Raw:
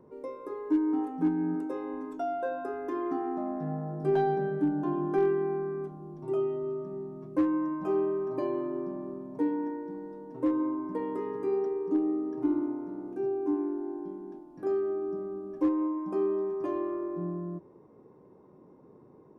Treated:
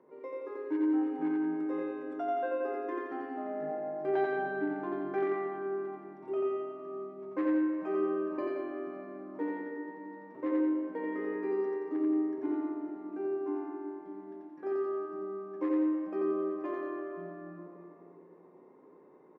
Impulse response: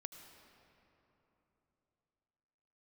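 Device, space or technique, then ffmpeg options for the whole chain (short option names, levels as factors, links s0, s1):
station announcement: -filter_complex "[0:a]highpass=330,lowpass=3500,equalizer=f=2000:t=o:w=0.55:g=8,aecho=1:1:87.46|174.9:0.794|0.398[s0];[1:a]atrim=start_sample=2205[s1];[s0][s1]afir=irnorm=-1:irlink=0,volume=1.19"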